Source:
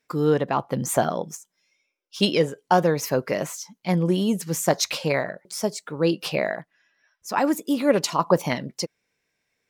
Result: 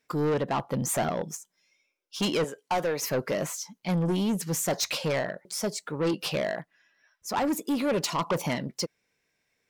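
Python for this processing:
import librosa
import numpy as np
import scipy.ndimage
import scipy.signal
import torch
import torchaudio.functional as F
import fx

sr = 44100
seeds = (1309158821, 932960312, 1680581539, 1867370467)

y = fx.highpass(x, sr, hz=510.0, slope=6, at=(2.44, 3.02))
y = 10.0 ** (-22.0 / 20.0) * np.tanh(y / 10.0 ** (-22.0 / 20.0))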